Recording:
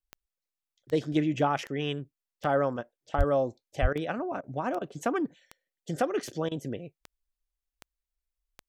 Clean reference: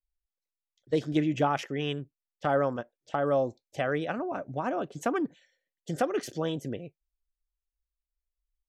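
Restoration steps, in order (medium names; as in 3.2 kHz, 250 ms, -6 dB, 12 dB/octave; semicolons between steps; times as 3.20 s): de-click; 3.17–3.29 s: high-pass 140 Hz 24 dB/octave; 3.81–3.93 s: high-pass 140 Hz 24 dB/octave; interpolate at 3.93/4.41/4.79/6.49 s, 23 ms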